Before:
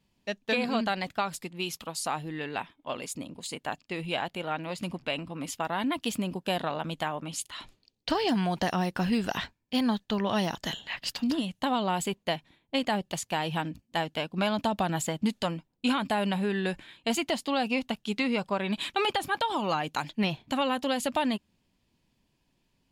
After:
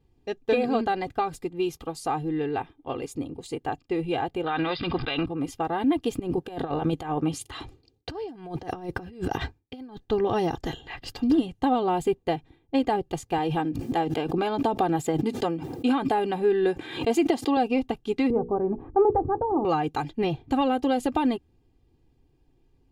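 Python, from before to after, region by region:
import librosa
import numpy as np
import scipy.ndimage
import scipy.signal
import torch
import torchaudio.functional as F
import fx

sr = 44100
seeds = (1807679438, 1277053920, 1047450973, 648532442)

y = fx.chain(x, sr, fx.cheby_ripple(hz=5100.0, ripple_db=9),
    fx.peak_eq(hz=3100.0, db=14.0, octaves=2.3),
    fx.env_flatten(amount_pct=70), at=(4.46, 5.26))
y = fx.chain(y, sr, fx.gate_hold(open_db=-54.0, close_db=-58.0, hold_ms=71.0, range_db=-21, attack_ms=1.4, release_ms=100.0),
    fx.highpass(hz=45.0, slope=12),
    fx.over_compress(threshold_db=-34.0, ratio=-0.5), at=(6.19, 9.97))
y = fx.chain(y, sr, fx.highpass(hz=180.0, slope=12),
    fx.pre_swell(db_per_s=55.0), at=(13.38, 17.57))
y = fx.chain(y, sr, fx.lowpass(hz=1000.0, slope=24),
    fx.low_shelf(hz=130.0, db=9.5),
    fx.hum_notches(base_hz=60, count=8), at=(18.3, 19.65))
y = fx.tilt_shelf(y, sr, db=9.5, hz=930.0)
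y = y + 0.79 * np.pad(y, (int(2.5 * sr / 1000.0), 0))[:len(y)]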